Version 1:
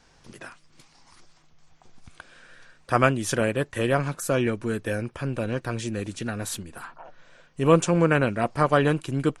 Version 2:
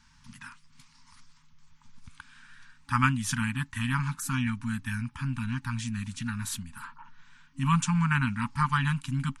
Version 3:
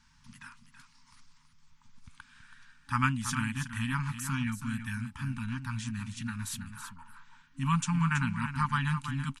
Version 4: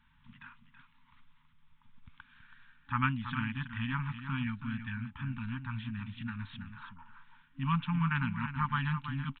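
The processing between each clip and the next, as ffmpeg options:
-af "lowshelf=f=150:g=3,afftfilt=real='re*(1-between(b*sr/4096,270,850))':imag='im*(1-between(b*sr/4096,270,850))':win_size=4096:overlap=0.75,volume=0.75"
-af "aecho=1:1:327:0.335,volume=0.668"
-af "aresample=8000,aresample=44100,volume=0.75"

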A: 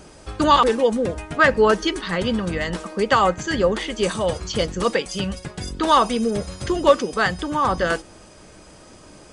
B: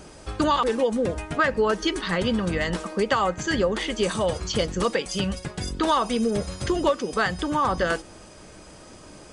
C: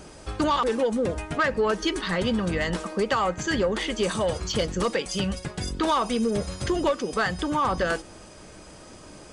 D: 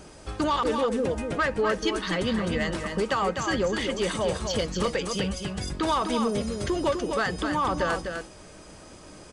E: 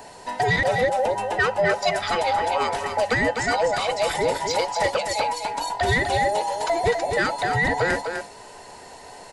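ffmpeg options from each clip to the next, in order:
-af "acompressor=threshold=0.112:ratio=4"
-af "asoftclip=type=tanh:threshold=0.178"
-af "aecho=1:1:252:0.501,volume=0.794"
-af "afftfilt=real='real(if(between(b,1,1008),(2*floor((b-1)/48)+1)*48-b,b),0)':imag='imag(if(between(b,1,1008),(2*floor((b-1)/48)+1)*48-b,b),0)*if(between(b,1,1008),-1,1)':win_size=2048:overlap=0.75,volume=1.58"

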